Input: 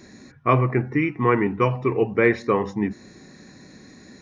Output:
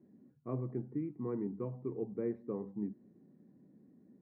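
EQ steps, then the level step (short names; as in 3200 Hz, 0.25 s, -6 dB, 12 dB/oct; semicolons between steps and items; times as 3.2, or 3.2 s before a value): ladder band-pass 240 Hz, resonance 20%; -3.5 dB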